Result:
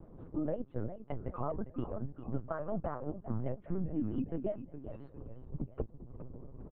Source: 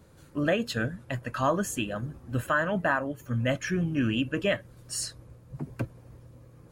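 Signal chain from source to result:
Bessel high-pass filter 150 Hz, order 6
spectral tilt −2.5 dB per octave
transient designer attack +2 dB, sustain −11 dB
downward compressor 2.5 to 1, threshold −42 dBFS, peak gain reduction 16 dB
Savitzky-Golay smoothing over 65 samples
on a send: repeating echo 407 ms, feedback 46%, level −11.5 dB
on the sum: linear-prediction vocoder at 8 kHz pitch kept
pitch modulation by a square or saw wave square 5.6 Hz, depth 100 cents
level +3 dB

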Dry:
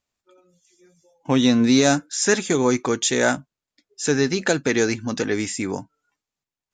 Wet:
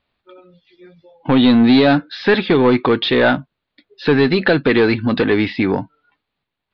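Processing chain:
in parallel at −1.5 dB: downward compressor, threshold −27 dBFS, peak gain reduction 14 dB
on the sum: soft clipping −13 dBFS, distortion −13 dB
Butterworth low-pass 4,300 Hz 72 dB per octave
level +7 dB

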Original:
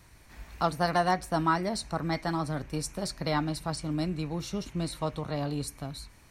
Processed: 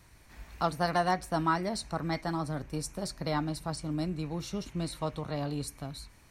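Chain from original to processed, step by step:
0:02.21–0:04.24: parametric band 2,600 Hz −3 dB 1.8 octaves
level −2 dB

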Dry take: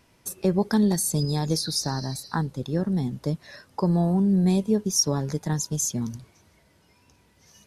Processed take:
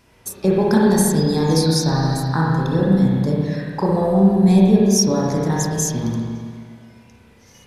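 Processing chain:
spring reverb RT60 1.9 s, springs 31/60 ms, chirp 55 ms, DRR −5 dB
level +3.5 dB

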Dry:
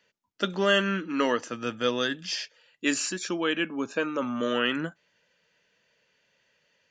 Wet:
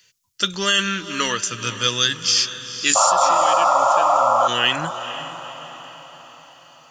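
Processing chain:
drawn EQ curve 130 Hz 0 dB, 240 Hz −16 dB, 370 Hz −12 dB, 710 Hz −18 dB, 1,100 Hz −7 dB, 1,800 Hz −6 dB, 6,700 Hz +10 dB
sound drawn into the spectrogram noise, 0:02.95–0:04.48, 520–1,400 Hz −19 dBFS
in parallel at +3 dB: compressor whose output falls as the input rises −28 dBFS, ratio −1
on the sum: feedback delay with all-pass diffusion 478 ms, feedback 51%, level −12 dB

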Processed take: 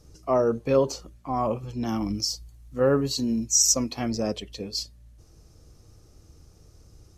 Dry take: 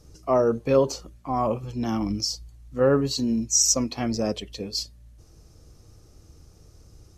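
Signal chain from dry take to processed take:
0:01.87–0:04.10: high-shelf EQ 11,000 Hz +8.5 dB
level −1.5 dB

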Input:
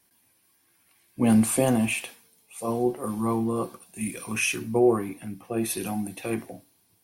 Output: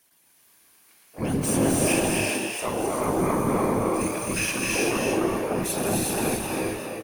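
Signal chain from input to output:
high-pass filter 62 Hz 12 dB per octave
low-shelf EQ 370 Hz −7 dB
brickwall limiter −22 dBFS, peak gain reduction 9.5 dB
pitch-shifted copies added −7 semitones −10 dB, +12 semitones −11 dB
random phases in short frames
echo with shifted repeats 259 ms, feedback 30%, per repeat +91 Hz, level −4.5 dB
reverb whose tail is shaped and stops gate 420 ms rising, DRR −1.5 dB
level +2.5 dB

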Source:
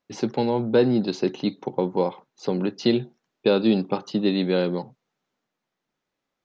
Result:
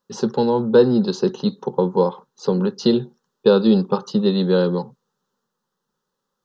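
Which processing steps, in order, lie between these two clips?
phaser with its sweep stopped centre 450 Hz, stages 8
level +7 dB

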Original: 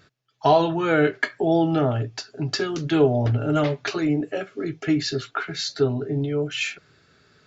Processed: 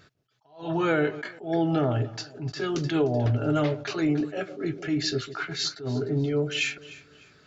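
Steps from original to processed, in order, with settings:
downward compressor, threshold −20 dBFS, peak gain reduction 8 dB
delay that swaps between a low-pass and a high-pass 151 ms, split 830 Hz, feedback 56%, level −14 dB
level that may rise only so fast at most 150 dB per second

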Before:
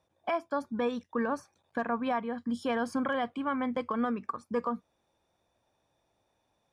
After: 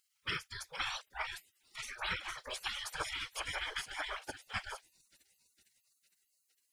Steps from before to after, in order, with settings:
random phases in short frames
on a send: delay with a high-pass on its return 458 ms, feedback 66%, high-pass 4,400 Hz, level −6.5 dB
on the sum: gate on every frequency bin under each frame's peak −25 dB weak
notch filter 690 Hz, Q 12
level +13 dB

